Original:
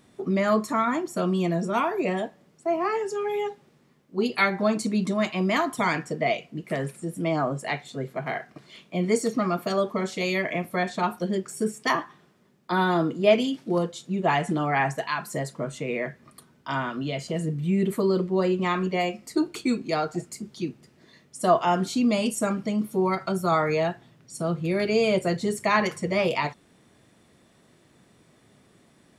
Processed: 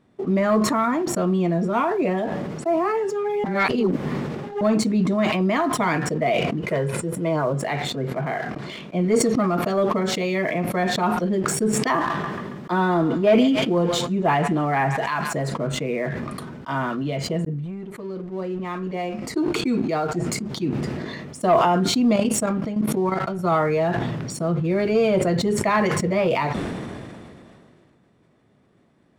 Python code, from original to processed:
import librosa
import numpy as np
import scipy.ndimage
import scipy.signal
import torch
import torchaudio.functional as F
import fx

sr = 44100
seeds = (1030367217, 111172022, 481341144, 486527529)

y = fx.comb(x, sr, ms=2.0, depth=0.56, at=(6.62, 7.54))
y = fx.echo_thinned(y, sr, ms=138, feedback_pct=54, hz=1100.0, wet_db=-14.5, at=(11.96, 15.5))
y = fx.level_steps(y, sr, step_db=12, at=(22.13, 23.39))
y = fx.edit(y, sr, fx.reverse_span(start_s=3.44, length_s=1.17),
    fx.fade_in_span(start_s=17.45, length_s=2.96), tone=tone)
y = fx.lowpass(y, sr, hz=1500.0, slope=6)
y = fx.leveller(y, sr, passes=1)
y = fx.sustainer(y, sr, db_per_s=24.0)